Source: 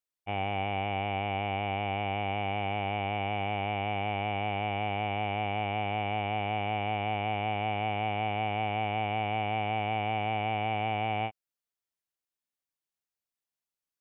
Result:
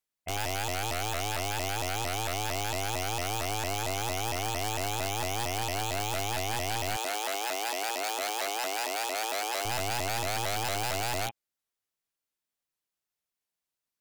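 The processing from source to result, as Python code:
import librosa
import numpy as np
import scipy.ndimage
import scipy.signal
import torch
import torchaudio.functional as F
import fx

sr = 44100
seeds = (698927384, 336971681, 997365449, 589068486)

y = (np.mod(10.0 ** (28.5 / 20.0) * x + 1.0, 2.0) - 1.0) / 10.0 ** (28.5 / 20.0)
y = fx.highpass(y, sr, hz=330.0, slope=24, at=(6.96, 9.65))
y = fx.vibrato_shape(y, sr, shape='saw_up', rate_hz=4.4, depth_cents=250.0)
y = y * 10.0 ** (2.5 / 20.0)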